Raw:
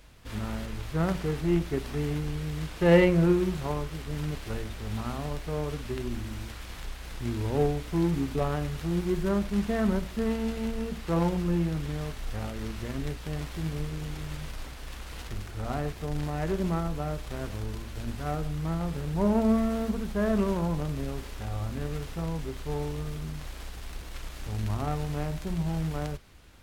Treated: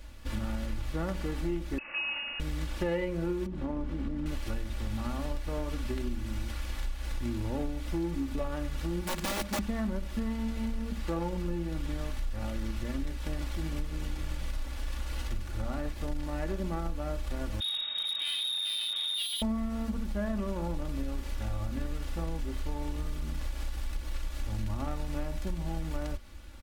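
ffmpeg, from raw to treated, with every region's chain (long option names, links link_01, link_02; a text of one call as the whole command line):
ffmpeg -i in.wav -filter_complex "[0:a]asettb=1/sr,asplit=3[link_01][link_02][link_03];[link_01]atrim=end=1.784[link_04];[link_02]atrim=start=1.78:end=2.4,asetpts=PTS-STARTPTS,afade=type=in:duration=0.004:curve=qsin,afade=type=out:start_time=0.616:duration=0.004:curve=qsin,highpass=290,lowpass=frequency=2600:width_type=q:width=0.5098,lowpass=frequency=2600:width_type=q:width=0.6013,lowpass=frequency=2600:width_type=q:width=0.9,lowpass=frequency=2600:width_type=q:width=2.563,afreqshift=-3000[link_05];[link_03]atrim=start=2.396[link_06];[link_04][link_05]acrossfade=duration=0.004:curve1=hsin:curve2=qsin[link_07];[link_07][link_06]acrossfade=duration=0.004:curve1=qsin:curve2=hsin,asettb=1/sr,asplit=3[link_08][link_09][link_10];[link_08]atrim=end=3.464[link_11];[link_09]atrim=start=3.46:end=4.26,asetpts=PTS-STARTPTS,afade=type=in:duration=0.004:curve=qsin,afade=type=out:start_time=0.796:duration=0.004:curve=qsin,lowpass=frequency=1500:poles=1,equalizer=frequency=240:width=1.3:gain=13,acompressor=threshold=-30dB:ratio=4:attack=3.2:release=140:knee=1:detection=peak[link_12];[link_10]atrim=start=4.256[link_13];[link_11][link_12]acrossfade=duration=0.004:curve1=hsin:curve2=qsin[link_14];[link_14][link_13]acrossfade=duration=0.004:curve1=qsin:curve2=hsin,asettb=1/sr,asplit=3[link_15][link_16][link_17];[link_15]atrim=end=9.034[link_18];[link_16]atrim=start=9.03:end=9.59,asetpts=PTS-STARTPTS,afade=type=in:duration=0.004:curve=qsin,afade=type=out:start_time=0.556:duration=0.004:curve=qsin,highpass=80,equalizer=frequency=340:width=4.6:gain=-7,aeval=exprs='(mod(17.8*val(0)+1,2)-1)/17.8':channel_layout=same[link_19];[link_17]atrim=start=9.586[link_20];[link_18][link_19]acrossfade=duration=0.004:curve1=hsin:curve2=qsin[link_21];[link_21][link_20]acrossfade=duration=0.004:curve1=qsin:curve2=hsin,asettb=1/sr,asplit=3[link_22][link_23][link_24];[link_22]atrim=end=17.604[link_25];[link_23]atrim=start=17.6:end=19.42,asetpts=PTS-STARTPTS,afade=type=in:duration=0.004:curve=qsin,afade=type=out:start_time=1.816:duration=0.004:curve=qsin,lowpass=frequency=3200:width_type=q:width=0.5098,lowpass=frequency=3200:width_type=q:width=0.6013,lowpass=frequency=3200:width_type=q:width=0.9,lowpass=frequency=3200:width_type=q:width=2.563,afreqshift=-3800,asoftclip=type=hard:threshold=-30dB[link_26];[link_24]atrim=start=19.416[link_27];[link_25][link_26]acrossfade=duration=0.004:curve1=hsin:curve2=qsin[link_28];[link_28][link_27]acrossfade=duration=0.004:curve1=qsin:curve2=hsin,lowshelf=frequency=110:gain=6.5,aecho=1:1:3.5:0.7,acompressor=threshold=-29dB:ratio=6" out.wav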